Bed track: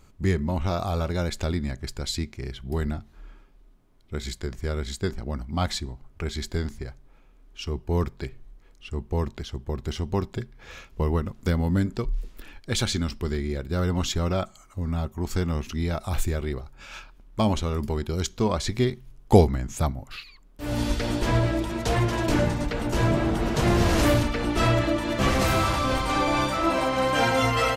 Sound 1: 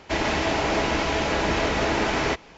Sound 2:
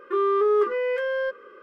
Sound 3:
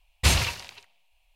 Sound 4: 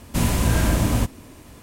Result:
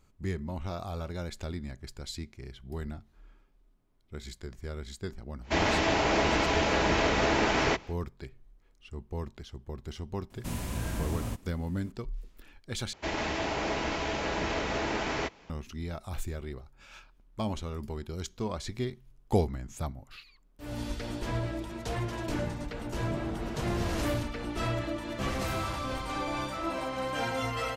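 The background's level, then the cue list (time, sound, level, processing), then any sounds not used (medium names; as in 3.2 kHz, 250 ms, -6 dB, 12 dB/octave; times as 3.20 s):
bed track -10 dB
5.41 s: add 1 -2.5 dB, fades 0.10 s
10.30 s: add 4 -14.5 dB
12.93 s: replace with 1 -8 dB
not used: 2, 3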